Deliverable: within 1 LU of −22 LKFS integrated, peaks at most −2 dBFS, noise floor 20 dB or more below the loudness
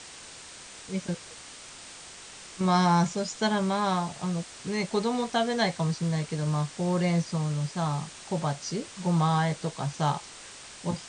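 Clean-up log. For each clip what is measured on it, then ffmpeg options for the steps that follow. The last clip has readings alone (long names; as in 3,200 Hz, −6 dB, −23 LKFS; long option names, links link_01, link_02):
background noise floor −46 dBFS; target noise floor −49 dBFS; integrated loudness −28.5 LKFS; sample peak −12.5 dBFS; target loudness −22.0 LKFS
→ -af "afftdn=noise_reduction=6:noise_floor=-46"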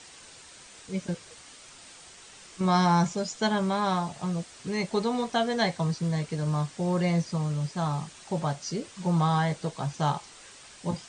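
background noise floor −50 dBFS; integrated loudness −28.5 LKFS; sample peak −13.0 dBFS; target loudness −22.0 LKFS
→ -af "volume=6.5dB"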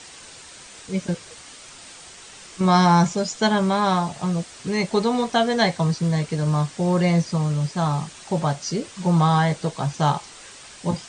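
integrated loudness −22.0 LKFS; sample peak −6.5 dBFS; background noise floor −44 dBFS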